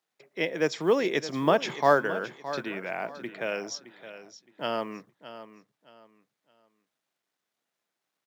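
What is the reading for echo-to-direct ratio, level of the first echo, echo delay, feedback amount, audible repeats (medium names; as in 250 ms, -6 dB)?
-13.0 dB, -13.5 dB, 617 ms, 28%, 2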